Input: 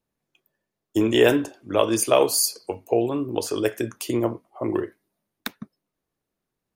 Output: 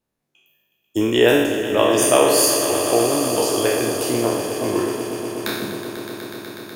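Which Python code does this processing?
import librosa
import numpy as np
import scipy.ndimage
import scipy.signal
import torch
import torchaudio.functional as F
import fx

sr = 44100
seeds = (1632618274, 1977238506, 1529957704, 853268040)

y = fx.spec_trails(x, sr, decay_s=1.07)
y = fx.echo_swell(y, sr, ms=123, loudest=5, wet_db=-13)
y = fx.cheby_harmonics(y, sr, harmonics=(4,), levels_db=(-39,), full_scale_db=-0.5)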